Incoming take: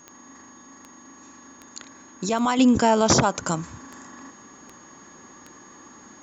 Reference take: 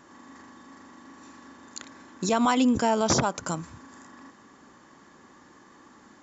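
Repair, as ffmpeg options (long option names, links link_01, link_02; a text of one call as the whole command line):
ffmpeg -i in.wav -af "adeclick=threshold=4,bandreject=frequency=6600:width=30,asetnsamples=nb_out_samples=441:pad=0,asendcmd='2.59 volume volume -5dB',volume=0dB" out.wav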